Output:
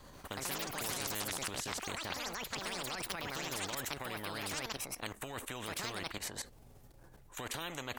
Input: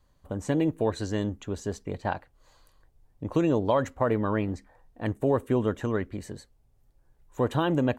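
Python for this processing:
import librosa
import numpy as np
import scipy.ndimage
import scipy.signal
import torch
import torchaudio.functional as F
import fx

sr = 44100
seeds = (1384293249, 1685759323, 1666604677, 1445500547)

y = fx.level_steps(x, sr, step_db=17)
y = fx.echo_pitch(y, sr, ms=139, semitones=5, count=3, db_per_echo=-3.0)
y = fx.spectral_comp(y, sr, ratio=4.0)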